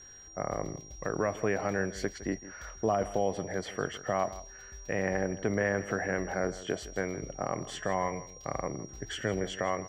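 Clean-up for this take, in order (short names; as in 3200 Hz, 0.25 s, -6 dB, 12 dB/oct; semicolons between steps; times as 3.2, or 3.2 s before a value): notch 5700 Hz, Q 30; inverse comb 0.161 s -16 dB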